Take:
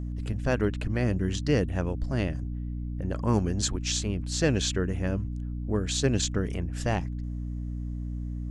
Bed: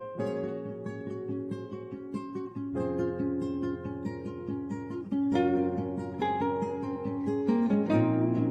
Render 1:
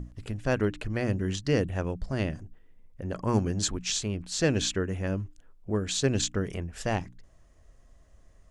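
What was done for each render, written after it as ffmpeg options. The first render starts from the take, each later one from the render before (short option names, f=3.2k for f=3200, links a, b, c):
-af "bandreject=f=60:t=h:w=6,bandreject=f=120:t=h:w=6,bandreject=f=180:t=h:w=6,bandreject=f=240:t=h:w=6,bandreject=f=300:t=h:w=6"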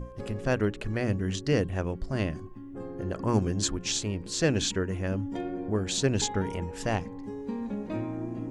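-filter_complex "[1:a]volume=-8dB[a];[0:a][a]amix=inputs=2:normalize=0"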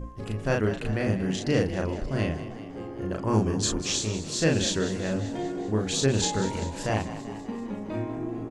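-filter_complex "[0:a]asplit=2[a][b];[b]adelay=37,volume=-2.5dB[c];[a][c]amix=inputs=2:normalize=0,asplit=8[d][e][f][g][h][i][j][k];[e]adelay=194,afreqshift=50,volume=-13dB[l];[f]adelay=388,afreqshift=100,volume=-16.9dB[m];[g]adelay=582,afreqshift=150,volume=-20.8dB[n];[h]adelay=776,afreqshift=200,volume=-24.6dB[o];[i]adelay=970,afreqshift=250,volume=-28.5dB[p];[j]adelay=1164,afreqshift=300,volume=-32.4dB[q];[k]adelay=1358,afreqshift=350,volume=-36.3dB[r];[d][l][m][n][o][p][q][r]amix=inputs=8:normalize=0"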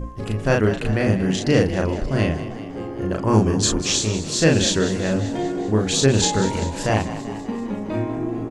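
-af "volume=7dB"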